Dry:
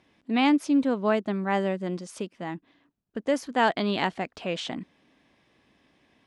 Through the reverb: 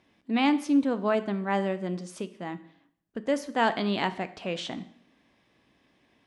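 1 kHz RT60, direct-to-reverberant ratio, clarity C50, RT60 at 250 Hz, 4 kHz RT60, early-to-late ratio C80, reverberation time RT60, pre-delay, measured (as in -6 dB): 0.65 s, 11.5 dB, 15.5 dB, 0.60 s, 0.60 s, 18.0 dB, 0.65 s, 5 ms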